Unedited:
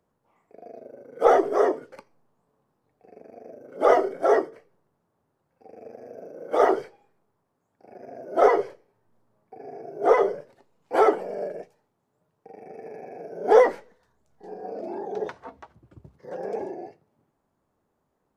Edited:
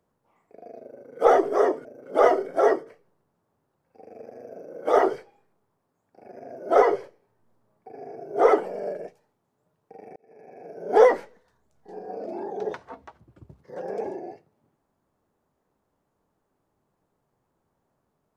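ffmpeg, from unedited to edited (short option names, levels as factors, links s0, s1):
-filter_complex "[0:a]asplit=4[s0][s1][s2][s3];[s0]atrim=end=1.852[s4];[s1]atrim=start=3.508:end=10.152[s5];[s2]atrim=start=11.038:end=12.71,asetpts=PTS-STARTPTS,afade=t=out:st=1.668:d=0.004:c=hsin[s6];[s3]atrim=start=12.71,asetpts=PTS-STARTPTS,afade=t=in:d=0.73[s7];[s4][s5]acrossfade=d=0.004:c1=hsin:c2=hsin[s8];[s6][s7]concat=n=2:v=0:a=1[s9];[s8][s9]acrossfade=d=0.004:c1=hsin:c2=hsin"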